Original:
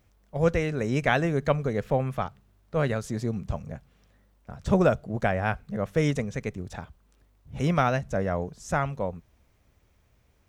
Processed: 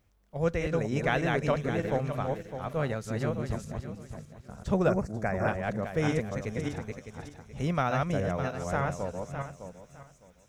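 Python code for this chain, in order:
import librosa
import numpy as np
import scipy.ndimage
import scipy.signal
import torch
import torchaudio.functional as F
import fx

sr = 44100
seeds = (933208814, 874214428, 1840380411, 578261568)

y = fx.reverse_delay_fb(x, sr, ms=304, feedback_pct=45, wet_db=-2.5)
y = fx.cheby1_bandstop(y, sr, low_hz=2200.0, high_hz=5100.0, order=2, at=(4.9, 5.48))
y = fx.echo_wet_highpass(y, sr, ms=490, feedback_pct=64, hz=5300.0, wet_db=-10)
y = y * 10.0 ** (-5.0 / 20.0)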